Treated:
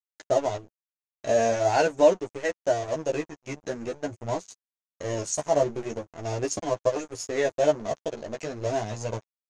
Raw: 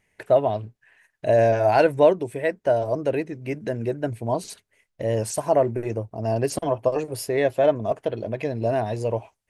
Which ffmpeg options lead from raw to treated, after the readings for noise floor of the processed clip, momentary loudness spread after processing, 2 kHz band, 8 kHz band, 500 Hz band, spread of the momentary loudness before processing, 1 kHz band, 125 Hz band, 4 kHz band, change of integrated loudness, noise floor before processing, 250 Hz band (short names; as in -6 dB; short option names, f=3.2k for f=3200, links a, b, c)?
under -85 dBFS, 13 LU, -2.5 dB, +3.0 dB, -4.0 dB, 11 LU, -3.5 dB, -7.5 dB, +0.5 dB, -4.0 dB, -76 dBFS, -5.0 dB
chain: -af "aeval=exprs='sgn(val(0))*max(abs(val(0))-0.0188,0)':c=same,flanger=delay=9.6:depth=4.1:regen=2:speed=0.44:shape=sinusoidal,lowpass=f=6.6k:t=q:w=7.1"